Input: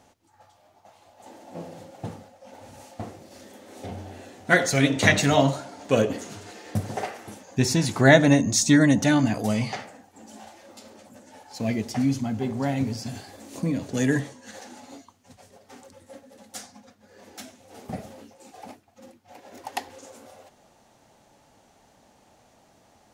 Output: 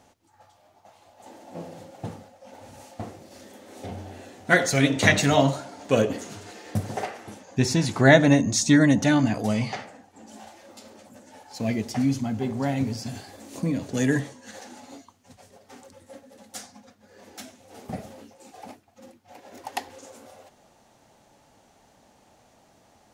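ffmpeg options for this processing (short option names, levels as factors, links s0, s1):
-filter_complex "[0:a]asettb=1/sr,asplit=3[s0][s1][s2];[s0]atrim=end=7.054[s3];[s1]atrim=start=7.05:end=10.32,asetpts=PTS-STARTPTS,afade=t=in:d=0.004:c=qsin,afade=t=out:st=3.266:d=0.004:c=qsin,highshelf=f=11000:g=-10.5[s4];[s2]atrim=start=10.316[s5];[s3][s4]acrossfade=d=0.004:c1=hsin:c2=qsin[s6];[s6][s5]acrossfade=d=0.004:c1=qsin:c2=hsin"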